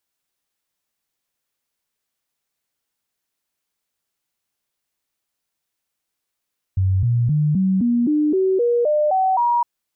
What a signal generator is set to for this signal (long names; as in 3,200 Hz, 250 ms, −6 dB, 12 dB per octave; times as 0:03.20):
stepped sweep 94.7 Hz up, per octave 3, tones 11, 0.26 s, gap 0.00 s −14.5 dBFS